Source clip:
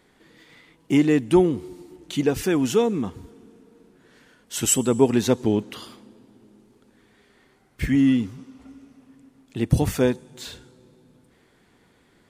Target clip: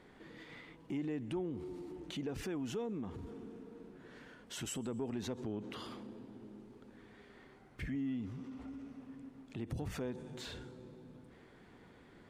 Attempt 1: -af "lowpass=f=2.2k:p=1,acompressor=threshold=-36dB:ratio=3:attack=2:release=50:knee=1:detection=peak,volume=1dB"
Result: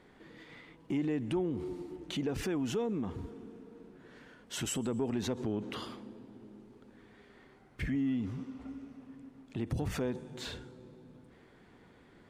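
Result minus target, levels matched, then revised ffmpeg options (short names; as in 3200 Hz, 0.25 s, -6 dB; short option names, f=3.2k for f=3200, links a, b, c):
compressor: peak gain reduction -6 dB
-af "lowpass=f=2.2k:p=1,acompressor=threshold=-45dB:ratio=3:attack=2:release=50:knee=1:detection=peak,volume=1dB"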